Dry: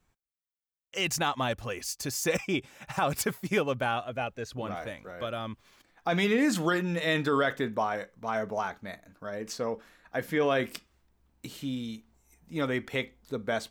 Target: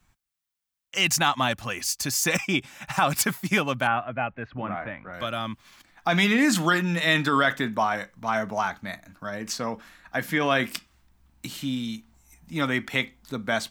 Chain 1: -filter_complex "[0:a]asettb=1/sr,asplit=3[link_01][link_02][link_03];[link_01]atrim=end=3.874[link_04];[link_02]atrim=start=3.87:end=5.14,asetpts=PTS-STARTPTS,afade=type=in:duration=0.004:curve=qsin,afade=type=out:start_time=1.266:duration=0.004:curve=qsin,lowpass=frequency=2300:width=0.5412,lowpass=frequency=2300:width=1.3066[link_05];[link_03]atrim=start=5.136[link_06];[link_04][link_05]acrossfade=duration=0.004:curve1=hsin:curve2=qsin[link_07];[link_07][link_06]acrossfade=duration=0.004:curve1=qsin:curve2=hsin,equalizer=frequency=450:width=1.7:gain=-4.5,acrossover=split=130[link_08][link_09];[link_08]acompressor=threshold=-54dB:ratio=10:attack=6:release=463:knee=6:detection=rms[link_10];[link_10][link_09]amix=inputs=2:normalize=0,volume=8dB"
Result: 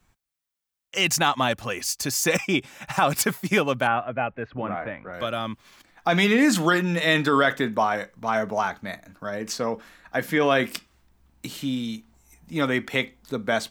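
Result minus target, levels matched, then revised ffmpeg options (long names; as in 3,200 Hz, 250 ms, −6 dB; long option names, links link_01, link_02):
500 Hz band +3.5 dB
-filter_complex "[0:a]asettb=1/sr,asplit=3[link_01][link_02][link_03];[link_01]atrim=end=3.874[link_04];[link_02]atrim=start=3.87:end=5.14,asetpts=PTS-STARTPTS,afade=type=in:duration=0.004:curve=qsin,afade=type=out:start_time=1.266:duration=0.004:curve=qsin,lowpass=frequency=2300:width=0.5412,lowpass=frequency=2300:width=1.3066[link_05];[link_03]atrim=start=5.136[link_06];[link_04][link_05]acrossfade=duration=0.004:curve1=hsin:curve2=qsin[link_07];[link_07][link_06]acrossfade=duration=0.004:curve1=qsin:curve2=hsin,equalizer=frequency=450:width=1.7:gain=-12,acrossover=split=130[link_08][link_09];[link_08]acompressor=threshold=-54dB:ratio=10:attack=6:release=463:knee=6:detection=rms[link_10];[link_10][link_09]amix=inputs=2:normalize=0,volume=8dB"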